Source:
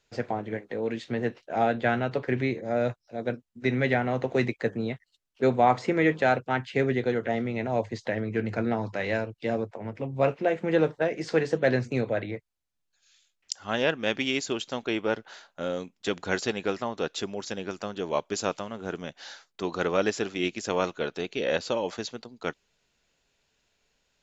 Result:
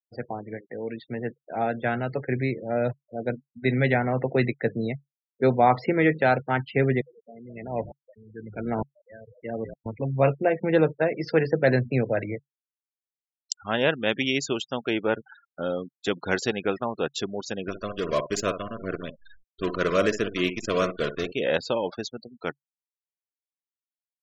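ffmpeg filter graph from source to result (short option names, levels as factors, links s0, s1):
-filter_complex "[0:a]asettb=1/sr,asplit=3[s0][s1][s2];[s0]atrim=end=7.014[s3];[s1]atrim=start=7.01:end=9.86,asetpts=PTS-STARTPTS,afade=t=in:d=0.004:c=qsin,afade=t=out:st=2.846:d=0.004:c=qsin,lowpass=f=5200:t=q:w=5.9,asplit=5[s4][s5][s6][s7][s8];[s5]adelay=200,afreqshift=-54,volume=0.2[s9];[s6]adelay=400,afreqshift=-108,volume=0.0741[s10];[s7]adelay=600,afreqshift=-162,volume=0.0272[s11];[s8]adelay=800,afreqshift=-216,volume=0.0101[s12];[s4][s9][s10][s11][s12]amix=inputs=5:normalize=0,atrim=end_sample=125685,aeval=exprs='val(0)*pow(10,-30*if(lt(mod(-1.1*n/s,1),2*abs(-1.1)/1000),1-mod(-1.1*n/s,1)/(2*abs(-1.1)/1000),(mod(-1.1*n/s,1)-2*abs(-1.1)/1000)/(1-2*abs(-1.1)/1000))/20)':c=same[s13];[s2]atrim=start=9.856[s14];[s3][s13]acrossfade=d=0.004:c1=hsin:c2=qsin[s15];[s15][s14]acrossfade=d=0.004:c1=qsin:c2=hsin,asettb=1/sr,asplit=3[s16][s17][s18];[s16]atrim=end=17.684[s19];[s17]atrim=start=17.68:end=21.32,asetpts=PTS-STARTPTS,afade=t=in:d=0.004:c=qsin,afade=t=out:st=3.636:d=0.004:c=qsin,acrusher=bits=6:dc=4:mix=0:aa=0.000001,asuperstop=centerf=830:order=20:qfactor=3.4,asplit=2[s20][s21];[s21]adelay=60,lowpass=f=2900:p=1,volume=0.316,asplit=2[s22][s23];[s23]adelay=60,lowpass=f=2900:p=1,volume=0.15[s24];[s20][s22][s24]amix=inputs=3:normalize=0,atrim=end_sample=160524[s25];[s18]atrim=start=21.316[s26];[s19][s25]acrossfade=d=0.004:c1=hsin:c2=qsin[s27];[s27][s26]acrossfade=d=0.004:c1=qsin:c2=hsin,afftfilt=real='re*gte(hypot(re,im),0.0158)':imag='im*gte(hypot(re,im),0.0158)':win_size=1024:overlap=0.75,adynamicequalizer=threshold=0.00316:dfrequency=140:dqfactor=6.1:tfrequency=140:tqfactor=6.1:attack=5:release=100:ratio=0.375:range=3:mode=boostabove:tftype=bell,dynaudnorm=f=720:g=7:m=2.24,volume=0.668"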